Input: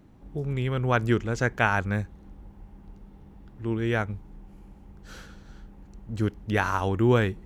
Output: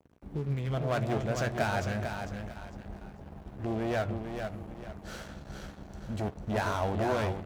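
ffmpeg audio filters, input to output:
-filter_complex "[0:a]lowshelf=f=260:g=3.5,asoftclip=type=tanh:threshold=0.0473,acompressor=threshold=0.0224:ratio=6,aecho=1:1:449|898|1347|1796:0.501|0.18|0.065|0.0234,flanger=delay=6.9:depth=6.2:regen=-88:speed=0.75:shape=triangular,asetnsamples=n=441:p=0,asendcmd='0.73 equalizer g 12.5',equalizer=f=650:t=o:w=0.43:g=-5,aeval=exprs='sgn(val(0))*max(abs(val(0))-0.00266,0)':c=same,highpass=48,bandreject=f=60:t=h:w=6,bandreject=f=120:t=h:w=6,asplit=2[s0][s1];[s1]adelay=14,volume=0.282[s2];[s0][s2]amix=inputs=2:normalize=0,volume=2.66"

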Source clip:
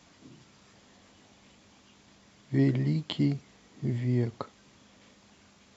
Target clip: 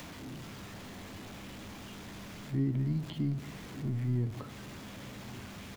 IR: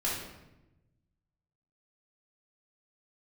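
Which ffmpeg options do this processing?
-filter_complex "[0:a]aeval=exprs='val(0)+0.5*0.0251*sgn(val(0))':c=same,acrossover=split=3400[s0][s1];[s1]acompressor=threshold=0.00398:ratio=4:attack=1:release=60[s2];[s0][s2]amix=inputs=2:normalize=0,highshelf=f=4600:g=4.5,asplit=2[s3][s4];[1:a]atrim=start_sample=2205[s5];[s4][s5]afir=irnorm=-1:irlink=0,volume=0.0891[s6];[s3][s6]amix=inputs=2:normalize=0,acrossover=split=270[s7][s8];[s8]acompressor=threshold=0.00631:ratio=2.5[s9];[s7][s9]amix=inputs=2:normalize=0,asplit=2[s10][s11];[s11]adelay=1166,volume=0.112,highshelf=f=4000:g=-26.2[s12];[s10][s12]amix=inputs=2:normalize=0,volume=0.562"

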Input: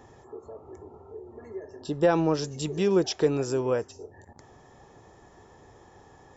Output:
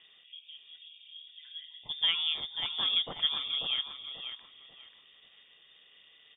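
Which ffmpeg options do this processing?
-filter_complex "[0:a]tremolo=f=160:d=0.571,lowpass=f=3100:t=q:w=0.5098,lowpass=f=3100:t=q:w=0.6013,lowpass=f=3100:t=q:w=0.9,lowpass=f=3100:t=q:w=2.563,afreqshift=-3700,tiltshelf=f=1400:g=7,asplit=2[s0][s1];[s1]adelay=539,lowpass=f=2500:p=1,volume=0.562,asplit=2[s2][s3];[s3]adelay=539,lowpass=f=2500:p=1,volume=0.34,asplit=2[s4][s5];[s5]adelay=539,lowpass=f=2500:p=1,volume=0.34,asplit=2[s6][s7];[s7]adelay=539,lowpass=f=2500:p=1,volume=0.34[s8];[s2][s4][s6][s8]amix=inputs=4:normalize=0[s9];[s0][s9]amix=inputs=2:normalize=0"

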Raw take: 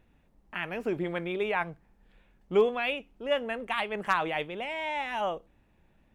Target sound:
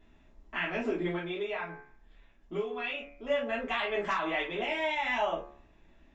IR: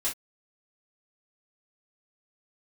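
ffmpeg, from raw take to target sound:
-filter_complex "[0:a]bandreject=f=71.01:t=h:w=4,bandreject=f=142.02:t=h:w=4,bandreject=f=213.03:t=h:w=4,bandreject=f=284.04:t=h:w=4,bandreject=f=355.05:t=h:w=4,bandreject=f=426.06:t=h:w=4,bandreject=f=497.07:t=h:w=4,bandreject=f=568.08:t=h:w=4,bandreject=f=639.09:t=h:w=4,bandreject=f=710.1:t=h:w=4,bandreject=f=781.11:t=h:w=4,bandreject=f=852.12:t=h:w=4,bandreject=f=923.13:t=h:w=4,bandreject=f=994.14:t=h:w=4,bandreject=f=1065.15:t=h:w=4,bandreject=f=1136.16:t=h:w=4,bandreject=f=1207.17:t=h:w=4,bandreject=f=1278.18:t=h:w=4,bandreject=f=1349.19:t=h:w=4,bandreject=f=1420.2:t=h:w=4,bandreject=f=1491.21:t=h:w=4,bandreject=f=1562.22:t=h:w=4,bandreject=f=1633.23:t=h:w=4,bandreject=f=1704.24:t=h:w=4,bandreject=f=1775.25:t=h:w=4,bandreject=f=1846.26:t=h:w=4,bandreject=f=1917.27:t=h:w=4,bandreject=f=1988.28:t=h:w=4,bandreject=f=2059.29:t=h:w=4,bandreject=f=2130.3:t=h:w=4,bandreject=f=2201.31:t=h:w=4,bandreject=f=2272.32:t=h:w=4,bandreject=f=2343.33:t=h:w=4,bandreject=f=2414.34:t=h:w=4,bandreject=f=2485.35:t=h:w=4,bandreject=f=2556.36:t=h:w=4,acompressor=threshold=0.0251:ratio=6,asplit=3[s0][s1][s2];[s0]afade=t=out:st=1.14:d=0.02[s3];[s1]flanger=delay=6.1:depth=1:regen=69:speed=2:shape=sinusoidal,afade=t=in:st=1.14:d=0.02,afade=t=out:st=3.26:d=0.02[s4];[s2]afade=t=in:st=3.26:d=0.02[s5];[s3][s4][s5]amix=inputs=3:normalize=0[s6];[1:a]atrim=start_sample=2205[s7];[s6][s7]afir=irnorm=-1:irlink=0,aresample=16000,aresample=44100"

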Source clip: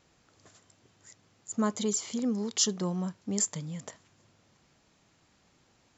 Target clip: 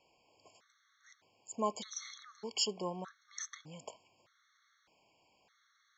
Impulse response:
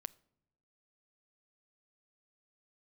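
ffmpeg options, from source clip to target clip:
-filter_complex "[0:a]acrossover=split=420 6000:gain=0.158 1 0.0794[s0][s1][s2];[s0][s1][s2]amix=inputs=3:normalize=0,afftfilt=real='re*gt(sin(2*PI*0.82*pts/sr)*(1-2*mod(floor(b*sr/1024/1100),2)),0)':imag='im*gt(sin(2*PI*0.82*pts/sr)*(1-2*mod(floor(b*sr/1024/1100),2)),0)':win_size=1024:overlap=0.75,volume=1.12"

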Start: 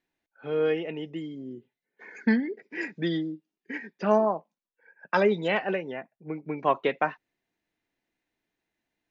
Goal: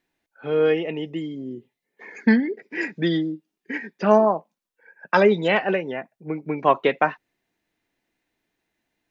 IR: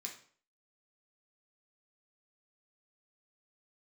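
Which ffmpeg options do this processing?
-filter_complex "[0:a]asettb=1/sr,asplit=3[s0][s1][s2];[s0]atrim=end=0.744[s3];[s1]atrim=start=0.74:end=2.28,asetpts=PTS-STARTPTS,afade=t=in:d=0.004:c=qsin,afade=t=out:st=1.536:d=0.004:c=qsin,bandreject=f=1500:w=6.3[s4];[s2]atrim=start=2.276[s5];[s3][s4]acrossfade=d=0.004:c1=hsin:c2=qsin[s6];[s6][s5]acrossfade=d=0.004:c1=qsin:c2=hsin,volume=2"

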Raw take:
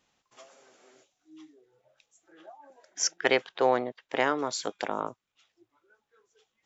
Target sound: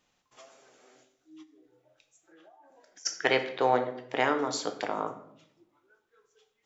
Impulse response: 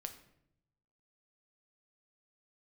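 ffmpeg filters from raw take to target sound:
-filter_complex "[1:a]atrim=start_sample=2205[s0];[0:a][s0]afir=irnorm=-1:irlink=0,asplit=3[s1][s2][s3];[s1]afade=t=out:st=1.42:d=0.02[s4];[s2]acompressor=threshold=0.00141:ratio=8,afade=t=in:st=1.42:d=0.02,afade=t=out:st=3.05:d=0.02[s5];[s3]afade=t=in:st=3.05:d=0.02[s6];[s4][s5][s6]amix=inputs=3:normalize=0,volume=1.41"

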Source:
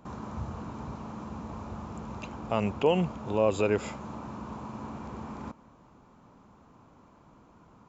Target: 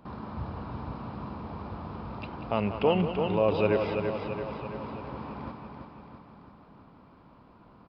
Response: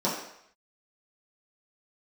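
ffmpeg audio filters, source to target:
-filter_complex "[0:a]asplit=2[s0][s1];[s1]aecho=0:1:335|670|1005|1340|1675|2010|2345:0.501|0.286|0.163|0.0928|0.0529|0.0302|0.0172[s2];[s0][s2]amix=inputs=2:normalize=0,aresample=11025,aresample=44100,asplit=2[s3][s4];[s4]aecho=0:1:188:0.299[s5];[s3][s5]amix=inputs=2:normalize=0"

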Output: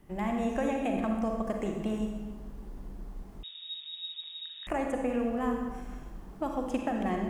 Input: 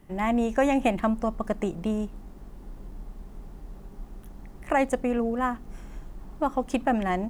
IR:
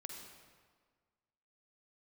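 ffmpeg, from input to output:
-filter_complex "[0:a]acrossover=split=740|2700[s0][s1][s2];[s0]acompressor=threshold=0.0447:ratio=4[s3];[s1]acompressor=threshold=0.0141:ratio=4[s4];[s2]acompressor=threshold=0.00398:ratio=4[s5];[s3][s4][s5]amix=inputs=3:normalize=0[s6];[1:a]atrim=start_sample=2205,asetrate=52920,aresample=44100[s7];[s6][s7]afir=irnorm=-1:irlink=0,asettb=1/sr,asplit=3[s8][s9][s10];[s8]atrim=end=3.434[s11];[s9]atrim=start=3.43:end=4.67,asetpts=PTS-STARTPTS,afade=t=in:d=0.004:c=qsin,afade=t=out:st=1.236:d=0.004:c=qsin,lowpass=f=3200:t=q:w=0.5098,lowpass=f=3200:t=q:w=0.6013,lowpass=f=3200:t=q:w=0.9,lowpass=f=3200:t=q:w=2.563,afreqshift=-3800[s12];[s10]atrim=start=4.666[s13];[s11][s12]acrossfade=d=0.004:c1=hsin:c2=qsin[s14];[s14][s13]acrossfade=d=0.004:c1=qsin:c2=hsin,volume=1.58"

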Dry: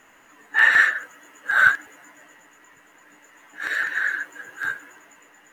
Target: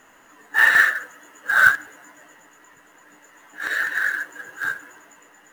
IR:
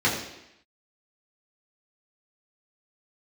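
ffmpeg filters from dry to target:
-filter_complex "[0:a]equalizer=f=2300:w=3.4:g=-6,asplit=2[s0][s1];[1:a]atrim=start_sample=2205[s2];[s1][s2]afir=irnorm=-1:irlink=0,volume=0.0211[s3];[s0][s3]amix=inputs=2:normalize=0,acrusher=bits=5:mode=log:mix=0:aa=0.000001,volume=1.26"

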